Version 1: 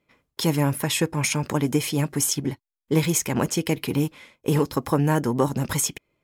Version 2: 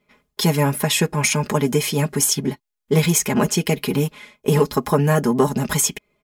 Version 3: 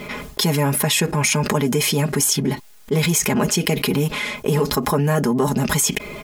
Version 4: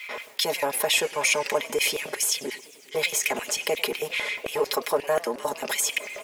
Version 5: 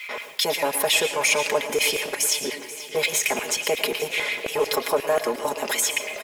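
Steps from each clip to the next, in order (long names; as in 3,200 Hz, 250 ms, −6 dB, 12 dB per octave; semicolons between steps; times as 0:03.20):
comb filter 4.8 ms, depth 79%; level +3 dB
envelope flattener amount 70%; level −4 dB
soft clipping −3.5 dBFS, distortion −32 dB; auto-filter high-pass square 5.6 Hz 540–2,300 Hz; feedback echo with a swinging delay time 103 ms, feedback 74%, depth 208 cents, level −20 dB; level −6 dB
in parallel at −9.5 dB: hard clipping −21 dBFS, distortion −12 dB; on the sum: repeating echo 483 ms, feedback 58%, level −16 dB; convolution reverb RT60 0.30 s, pre-delay 109 ms, DRR 10.5 dB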